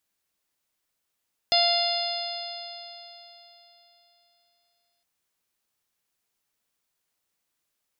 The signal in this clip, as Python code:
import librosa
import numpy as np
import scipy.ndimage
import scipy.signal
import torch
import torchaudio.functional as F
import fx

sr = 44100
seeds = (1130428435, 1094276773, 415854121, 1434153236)

y = fx.additive_stiff(sr, length_s=3.51, hz=692.0, level_db=-22.0, upper_db=(-16.0, -11.0, -8.5, -3, -2, 0), decay_s=3.56, stiffness=0.0014)